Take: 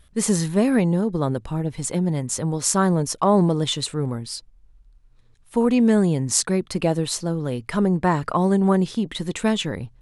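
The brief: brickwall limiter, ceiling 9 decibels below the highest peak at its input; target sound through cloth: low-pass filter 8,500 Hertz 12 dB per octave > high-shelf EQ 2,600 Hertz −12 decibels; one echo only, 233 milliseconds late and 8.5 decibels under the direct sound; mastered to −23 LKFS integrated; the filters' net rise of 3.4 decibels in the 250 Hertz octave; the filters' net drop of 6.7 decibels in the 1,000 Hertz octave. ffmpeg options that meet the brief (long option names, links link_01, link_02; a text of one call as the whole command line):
ffmpeg -i in.wav -af "equalizer=frequency=250:width_type=o:gain=5,equalizer=frequency=1000:width_type=o:gain=-7,alimiter=limit=-11.5dB:level=0:latency=1,lowpass=8500,highshelf=frequency=2600:gain=-12,aecho=1:1:233:0.376,volume=-1dB" out.wav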